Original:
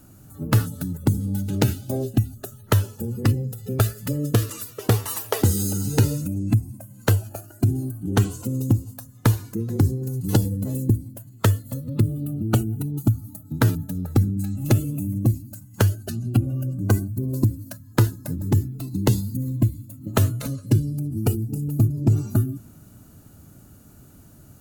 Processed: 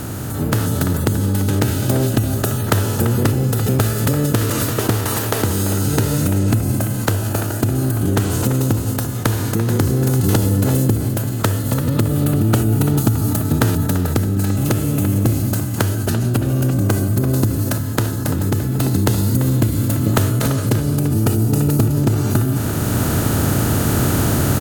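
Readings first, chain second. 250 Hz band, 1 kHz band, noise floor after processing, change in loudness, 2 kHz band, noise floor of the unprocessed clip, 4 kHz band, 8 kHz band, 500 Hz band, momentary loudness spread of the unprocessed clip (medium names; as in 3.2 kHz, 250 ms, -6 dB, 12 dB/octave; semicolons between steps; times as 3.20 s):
+7.5 dB, +8.5 dB, -22 dBFS, +6.0 dB, +8.5 dB, -49 dBFS, +8.5 dB, +9.5 dB, +8.0 dB, 7 LU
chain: spectral levelling over time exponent 0.4; compression, threshold -17 dBFS, peak gain reduction 8 dB; speakerphone echo 340 ms, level -8 dB; level rider; trim -1 dB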